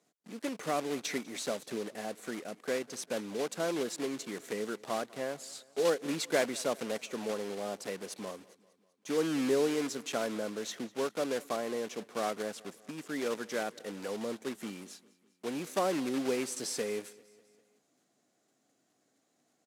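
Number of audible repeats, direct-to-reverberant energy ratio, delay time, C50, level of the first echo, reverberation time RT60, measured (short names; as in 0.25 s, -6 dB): 3, none, 0.198 s, none, -23.0 dB, none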